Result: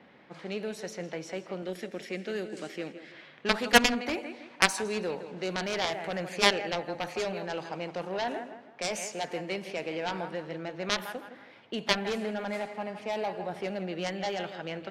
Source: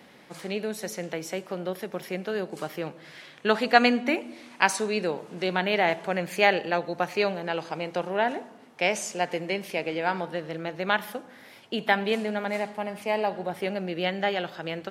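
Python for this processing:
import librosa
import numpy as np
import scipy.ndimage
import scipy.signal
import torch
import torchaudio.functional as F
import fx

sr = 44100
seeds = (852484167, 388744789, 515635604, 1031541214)

y = fx.env_lowpass(x, sr, base_hz=2600.0, full_db=-23.0)
y = fx.graphic_eq(y, sr, hz=(125, 250, 1000, 2000, 8000), db=(-10, 6, -11, 5, 9), at=(1.62, 3.12))
y = fx.echo_tape(y, sr, ms=162, feedback_pct=36, wet_db=-12, lp_hz=4400.0, drive_db=6.0, wow_cents=23)
y = fx.cheby_harmonics(y, sr, harmonics=(7,), levels_db=(-12,), full_scale_db=-1.5)
y = y * 10.0 ** (-1.0 / 20.0)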